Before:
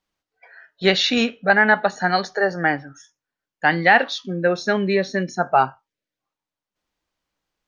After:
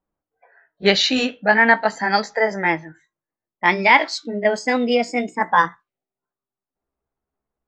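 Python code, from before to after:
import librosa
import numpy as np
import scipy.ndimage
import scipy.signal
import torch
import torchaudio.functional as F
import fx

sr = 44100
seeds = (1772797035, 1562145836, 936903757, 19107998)

y = fx.pitch_glide(x, sr, semitones=5.5, runs='starting unshifted')
y = fx.env_lowpass(y, sr, base_hz=910.0, full_db=-17.5)
y = y * librosa.db_to_amplitude(2.0)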